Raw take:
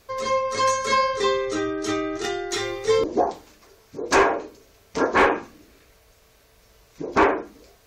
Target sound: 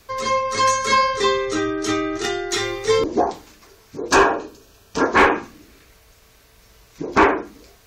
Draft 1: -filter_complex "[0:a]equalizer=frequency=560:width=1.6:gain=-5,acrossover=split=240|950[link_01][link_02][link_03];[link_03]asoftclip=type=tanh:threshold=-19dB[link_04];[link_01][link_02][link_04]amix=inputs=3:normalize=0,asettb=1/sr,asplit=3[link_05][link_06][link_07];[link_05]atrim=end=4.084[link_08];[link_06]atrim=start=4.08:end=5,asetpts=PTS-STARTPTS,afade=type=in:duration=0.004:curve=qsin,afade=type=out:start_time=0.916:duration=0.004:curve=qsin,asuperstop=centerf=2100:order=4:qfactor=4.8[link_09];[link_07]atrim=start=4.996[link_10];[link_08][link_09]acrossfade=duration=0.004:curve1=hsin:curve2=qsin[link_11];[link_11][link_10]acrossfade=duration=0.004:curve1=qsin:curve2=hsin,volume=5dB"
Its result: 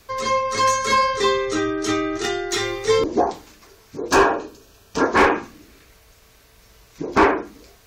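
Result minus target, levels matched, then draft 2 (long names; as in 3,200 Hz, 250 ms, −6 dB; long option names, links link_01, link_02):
soft clipping: distortion +18 dB
-filter_complex "[0:a]equalizer=frequency=560:width=1.6:gain=-5,acrossover=split=240|950[link_01][link_02][link_03];[link_03]asoftclip=type=tanh:threshold=-7dB[link_04];[link_01][link_02][link_04]amix=inputs=3:normalize=0,asettb=1/sr,asplit=3[link_05][link_06][link_07];[link_05]atrim=end=4.084[link_08];[link_06]atrim=start=4.08:end=5,asetpts=PTS-STARTPTS,afade=type=in:duration=0.004:curve=qsin,afade=type=out:start_time=0.916:duration=0.004:curve=qsin,asuperstop=centerf=2100:order=4:qfactor=4.8[link_09];[link_07]atrim=start=4.996[link_10];[link_08][link_09]acrossfade=duration=0.004:curve1=hsin:curve2=qsin[link_11];[link_11][link_10]acrossfade=duration=0.004:curve1=qsin:curve2=hsin,volume=5dB"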